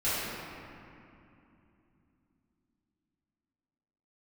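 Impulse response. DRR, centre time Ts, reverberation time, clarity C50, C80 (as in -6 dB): -14.0 dB, 177 ms, 2.8 s, -4.5 dB, -2.0 dB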